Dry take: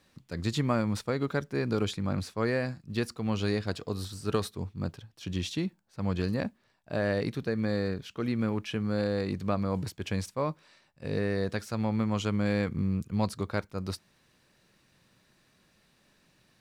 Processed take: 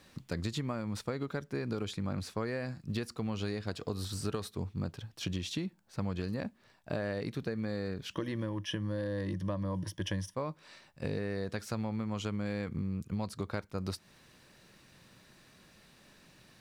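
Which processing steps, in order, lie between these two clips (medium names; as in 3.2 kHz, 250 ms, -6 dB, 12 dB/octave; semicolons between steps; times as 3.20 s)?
8.13–10.35 s: rippled EQ curve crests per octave 1.2, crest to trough 13 dB; compression 10:1, threshold -38 dBFS, peak gain reduction 16.5 dB; trim +6 dB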